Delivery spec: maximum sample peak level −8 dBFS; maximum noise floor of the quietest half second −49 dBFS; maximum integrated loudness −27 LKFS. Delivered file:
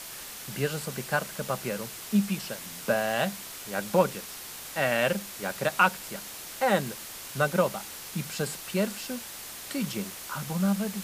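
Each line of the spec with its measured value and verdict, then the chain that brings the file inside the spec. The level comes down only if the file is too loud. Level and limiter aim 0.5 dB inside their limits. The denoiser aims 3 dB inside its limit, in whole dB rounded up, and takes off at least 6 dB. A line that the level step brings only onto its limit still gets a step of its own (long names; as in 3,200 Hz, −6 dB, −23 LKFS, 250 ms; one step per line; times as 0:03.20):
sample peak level −8.5 dBFS: in spec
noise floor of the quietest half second −41 dBFS: out of spec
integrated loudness −29.5 LKFS: in spec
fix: broadband denoise 11 dB, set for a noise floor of −41 dBFS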